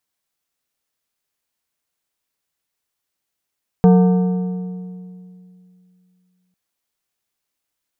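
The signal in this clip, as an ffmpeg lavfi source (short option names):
-f lavfi -i "aevalsrc='0.473*pow(10,-3*t/2.71)*sin(2*PI*182*t)+0.211*pow(10,-3*t/2.059)*sin(2*PI*455*t)+0.0944*pow(10,-3*t/1.788)*sin(2*PI*728*t)+0.0422*pow(10,-3*t/1.672)*sin(2*PI*910*t)+0.0188*pow(10,-3*t/1.546)*sin(2*PI*1183*t)+0.00841*pow(10,-3*t/1.426)*sin(2*PI*1547*t)':d=2.7:s=44100"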